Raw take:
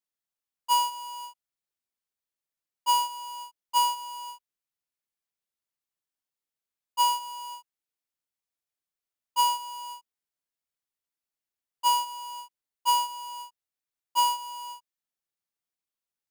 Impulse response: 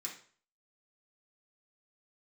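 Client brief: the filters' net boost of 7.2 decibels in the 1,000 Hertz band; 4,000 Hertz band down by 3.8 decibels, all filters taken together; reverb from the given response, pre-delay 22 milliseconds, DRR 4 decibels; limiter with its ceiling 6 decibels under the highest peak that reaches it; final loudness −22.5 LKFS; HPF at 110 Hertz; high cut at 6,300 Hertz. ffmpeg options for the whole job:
-filter_complex "[0:a]highpass=110,lowpass=6300,equalizer=frequency=1000:width_type=o:gain=7.5,equalizer=frequency=4000:width_type=o:gain=-7,alimiter=limit=-16dB:level=0:latency=1,asplit=2[link_01][link_02];[1:a]atrim=start_sample=2205,adelay=22[link_03];[link_02][link_03]afir=irnorm=-1:irlink=0,volume=-2.5dB[link_04];[link_01][link_04]amix=inputs=2:normalize=0,volume=3.5dB"

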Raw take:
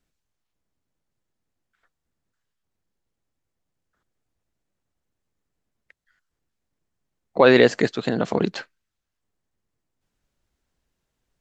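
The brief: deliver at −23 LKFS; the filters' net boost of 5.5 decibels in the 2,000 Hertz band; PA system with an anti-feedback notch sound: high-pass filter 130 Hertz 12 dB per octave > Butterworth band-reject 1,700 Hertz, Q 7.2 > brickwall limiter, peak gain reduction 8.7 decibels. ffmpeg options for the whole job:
ffmpeg -i in.wav -af "highpass=130,asuperstop=centerf=1700:order=8:qfactor=7.2,equalizer=frequency=2000:width_type=o:gain=9,alimiter=limit=-9dB:level=0:latency=1" out.wav

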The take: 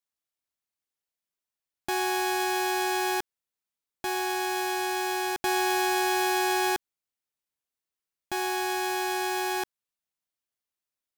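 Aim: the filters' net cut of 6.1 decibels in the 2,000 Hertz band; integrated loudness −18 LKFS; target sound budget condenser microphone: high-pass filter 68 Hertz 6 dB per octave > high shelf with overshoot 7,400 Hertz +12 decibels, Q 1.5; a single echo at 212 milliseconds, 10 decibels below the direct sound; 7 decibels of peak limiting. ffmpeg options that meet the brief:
ffmpeg -i in.wav -af "equalizer=frequency=2000:width_type=o:gain=-7.5,alimiter=level_in=1dB:limit=-24dB:level=0:latency=1,volume=-1dB,highpass=frequency=68:poles=1,highshelf=frequency=7400:width_type=q:width=1.5:gain=12,aecho=1:1:212:0.316,volume=10dB" out.wav

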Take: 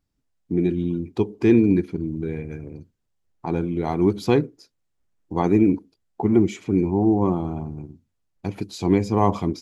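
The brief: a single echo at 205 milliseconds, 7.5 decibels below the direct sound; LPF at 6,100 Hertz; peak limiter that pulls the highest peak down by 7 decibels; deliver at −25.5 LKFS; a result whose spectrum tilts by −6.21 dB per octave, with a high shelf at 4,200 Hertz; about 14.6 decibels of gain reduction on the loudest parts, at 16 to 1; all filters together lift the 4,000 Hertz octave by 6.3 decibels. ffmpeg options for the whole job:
ffmpeg -i in.wav -af "lowpass=6100,equalizer=frequency=4000:width_type=o:gain=3.5,highshelf=frequency=4200:gain=9,acompressor=threshold=-26dB:ratio=16,alimiter=limit=-22dB:level=0:latency=1,aecho=1:1:205:0.422,volume=8dB" out.wav

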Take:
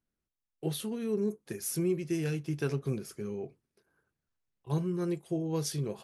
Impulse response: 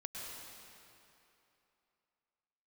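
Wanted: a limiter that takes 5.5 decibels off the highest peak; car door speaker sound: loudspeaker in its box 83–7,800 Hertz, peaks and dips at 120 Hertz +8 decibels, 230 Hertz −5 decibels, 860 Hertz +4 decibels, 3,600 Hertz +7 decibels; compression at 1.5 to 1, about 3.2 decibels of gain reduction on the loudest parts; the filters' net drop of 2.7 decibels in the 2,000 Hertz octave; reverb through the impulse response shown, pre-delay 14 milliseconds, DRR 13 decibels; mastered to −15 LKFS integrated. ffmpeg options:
-filter_complex "[0:a]equalizer=frequency=2000:width_type=o:gain=-4.5,acompressor=threshold=-35dB:ratio=1.5,alimiter=level_in=4dB:limit=-24dB:level=0:latency=1,volume=-4dB,asplit=2[link_01][link_02];[1:a]atrim=start_sample=2205,adelay=14[link_03];[link_02][link_03]afir=irnorm=-1:irlink=0,volume=-12dB[link_04];[link_01][link_04]amix=inputs=2:normalize=0,highpass=83,equalizer=frequency=120:width_type=q:width=4:gain=8,equalizer=frequency=230:width_type=q:width=4:gain=-5,equalizer=frequency=860:width_type=q:width=4:gain=4,equalizer=frequency=3600:width_type=q:width=4:gain=7,lowpass=frequency=7800:width=0.5412,lowpass=frequency=7800:width=1.3066,volume=22.5dB"

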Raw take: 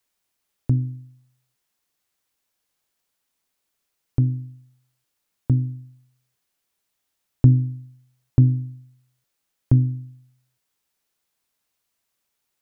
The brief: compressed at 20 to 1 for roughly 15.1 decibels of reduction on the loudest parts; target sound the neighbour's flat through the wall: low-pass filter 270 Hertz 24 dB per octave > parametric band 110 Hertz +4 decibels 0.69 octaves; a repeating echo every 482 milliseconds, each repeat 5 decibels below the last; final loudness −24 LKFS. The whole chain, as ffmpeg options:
ffmpeg -i in.wav -af "acompressor=threshold=-24dB:ratio=20,lowpass=frequency=270:width=0.5412,lowpass=frequency=270:width=1.3066,equalizer=frequency=110:width_type=o:width=0.69:gain=4,aecho=1:1:482|964|1446|1928|2410|2892|3374:0.562|0.315|0.176|0.0988|0.0553|0.031|0.0173,volume=8.5dB" out.wav

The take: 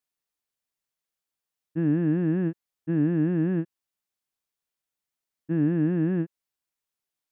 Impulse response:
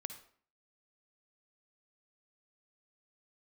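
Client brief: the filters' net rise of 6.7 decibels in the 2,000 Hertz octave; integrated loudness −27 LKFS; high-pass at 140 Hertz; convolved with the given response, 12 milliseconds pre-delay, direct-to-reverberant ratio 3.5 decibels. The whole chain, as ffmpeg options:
-filter_complex "[0:a]highpass=140,equalizer=frequency=2000:width_type=o:gain=8.5,asplit=2[link_01][link_02];[1:a]atrim=start_sample=2205,adelay=12[link_03];[link_02][link_03]afir=irnorm=-1:irlink=0,volume=-1dB[link_04];[link_01][link_04]amix=inputs=2:normalize=0,volume=-3dB"

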